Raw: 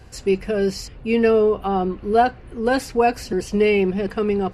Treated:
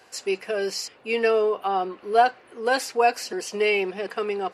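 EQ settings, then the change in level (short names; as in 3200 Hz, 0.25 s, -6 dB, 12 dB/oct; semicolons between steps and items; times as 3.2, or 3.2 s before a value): HPF 530 Hz 12 dB/oct; dynamic EQ 5900 Hz, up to +3 dB, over -40 dBFS, Q 0.75; 0.0 dB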